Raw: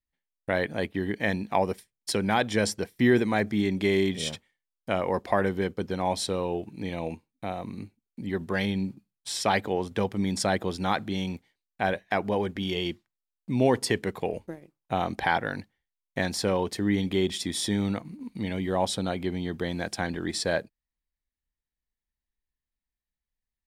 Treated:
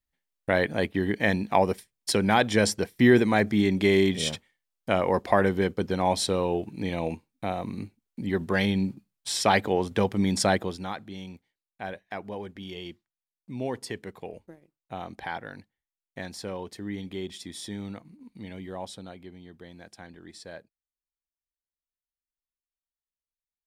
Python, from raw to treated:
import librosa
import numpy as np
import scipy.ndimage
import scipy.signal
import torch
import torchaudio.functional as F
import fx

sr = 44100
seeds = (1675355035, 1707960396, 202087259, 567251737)

y = fx.gain(x, sr, db=fx.line((10.51, 3.0), (10.96, -9.5), (18.63, -9.5), (19.37, -16.0)))